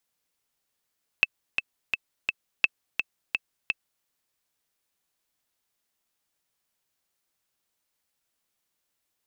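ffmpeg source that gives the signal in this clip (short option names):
-f lavfi -i "aevalsrc='pow(10,(-5-6.5*gte(mod(t,4*60/170),60/170))/20)*sin(2*PI*2630*mod(t,60/170))*exp(-6.91*mod(t,60/170)/0.03)':d=2.82:s=44100"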